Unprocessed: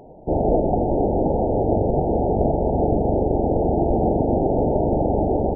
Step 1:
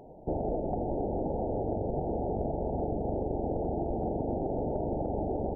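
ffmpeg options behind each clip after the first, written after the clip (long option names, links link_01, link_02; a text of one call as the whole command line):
ffmpeg -i in.wav -af "acompressor=threshold=-22dB:ratio=6,volume=-6dB" out.wav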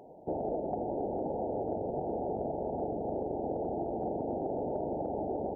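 ffmpeg -i in.wav -af "highpass=frequency=290:poles=1" out.wav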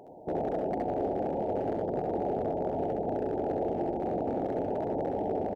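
ffmpeg -i in.wav -filter_complex "[0:a]asoftclip=type=hard:threshold=-27.5dB,asplit=2[link_01][link_02];[link_02]aecho=0:1:67|78:0.668|0.376[link_03];[link_01][link_03]amix=inputs=2:normalize=0,volume=1.5dB" out.wav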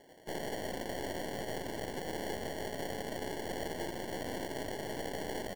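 ffmpeg -i in.wav -af "acrusher=samples=35:mix=1:aa=0.000001,aeval=exprs='0.0944*(cos(1*acos(clip(val(0)/0.0944,-1,1)))-cos(1*PI/2))+0.0188*(cos(4*acos(clip(val(0)/0.0944,-1,1)))-cos(4*PI/2))':channel_layout=same,volume=-9dB" out.wav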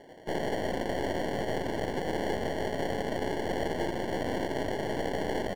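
ffmpeg -i in.wav -af "lowpass=frequency=2500:poles=1,volume=8dB" out.wav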